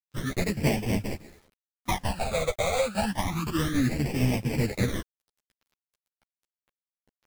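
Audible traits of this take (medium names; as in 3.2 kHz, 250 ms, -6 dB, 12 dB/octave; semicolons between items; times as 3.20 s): aliases and images of a low sample rate 1.5 kHz, jitter 20%; phasing stages 12, 0.29 Hz, lowest notch 290–1300 Hz; a quantiser's noise floor 10-bit, dither none; a shimmering, thickened sound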